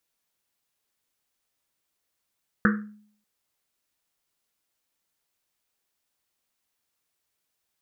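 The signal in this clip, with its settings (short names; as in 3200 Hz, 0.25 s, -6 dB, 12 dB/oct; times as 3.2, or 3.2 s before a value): Risset drum length 0.59 s, pitch 210 Hz, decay 0.59 s, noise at 1500 Hz, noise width 580 Hz, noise 30%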